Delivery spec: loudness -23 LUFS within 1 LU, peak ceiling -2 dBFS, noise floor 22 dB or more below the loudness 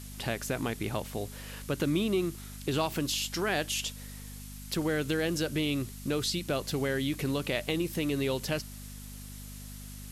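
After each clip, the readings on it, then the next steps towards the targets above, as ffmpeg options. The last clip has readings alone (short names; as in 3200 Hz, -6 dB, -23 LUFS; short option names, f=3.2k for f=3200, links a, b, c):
hum 50 Hz; harmonics up to 250 Hz; hum level -43 dBFS; noise floor -44 dBFS; noise floor target -54 dBFS; loudness -31.5 LUFS; peak -15.5 dBFS; loudness target -23.0 LUFS
-> -af "bandreject=f=50:t=h:w=4,bandreject=f=100:t=h:w=4,bandreject=f=150:t=h:w=4,bandreject=f=200:t=h:w=4,bandreject=f=250:t=h:w=4"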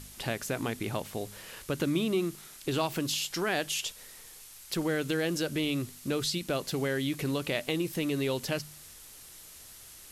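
hum none; noise floor -50 dBFS; noise floor target -54 dBFS
-> -af "afftdn=nr=6:nf=-50"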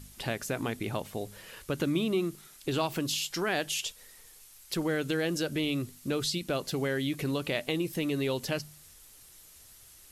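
noise floor -55 dBFS; loudness -32.0 LUFS; peak -15.0 dBFS; loudness target -23.0 LUFS
-> -af "volume=9dB"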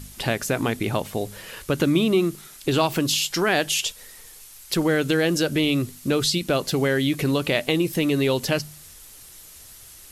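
loudness -23.0 LUFS; peak -6.0 dBFS; noise floor -46 dBFS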